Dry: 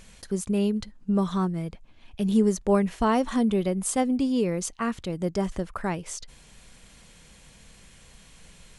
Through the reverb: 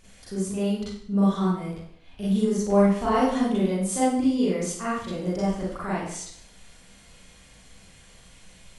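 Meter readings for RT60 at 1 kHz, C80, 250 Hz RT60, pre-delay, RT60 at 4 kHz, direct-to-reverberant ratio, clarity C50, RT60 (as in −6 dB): 0.60 s, 3.5 dB, 0.65 s, 35 ms, 0.60 s, −9.0 dB, 0.0 dB, 0.60 s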